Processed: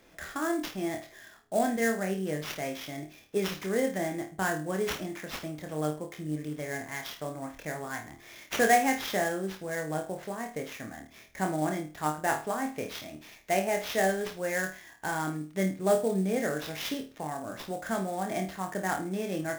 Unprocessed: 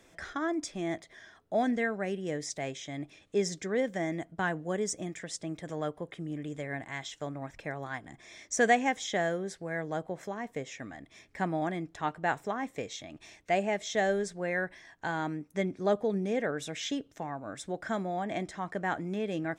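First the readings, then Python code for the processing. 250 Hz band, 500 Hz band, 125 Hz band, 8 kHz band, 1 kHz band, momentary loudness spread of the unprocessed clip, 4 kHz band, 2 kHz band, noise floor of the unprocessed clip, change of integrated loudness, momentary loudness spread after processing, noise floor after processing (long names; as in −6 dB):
+1.5 dB, +1.5 dB, +2.0 dB, +2.5 dB, +2.0 dB, 11 LU, +2.0 dB, +1.5 dB, −62 dBFS, +2.0 dB, 11 LU, −54 dBFS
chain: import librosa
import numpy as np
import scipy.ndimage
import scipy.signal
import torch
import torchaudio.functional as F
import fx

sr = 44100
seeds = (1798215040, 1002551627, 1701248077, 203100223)

y = fx.room_flutter(x, sr, wall_m=4.5, rt60_s=0.33)
y = fx.sample_hold(y, sr, seeds[0], rate_hz=8700.0, jitter_pct=20)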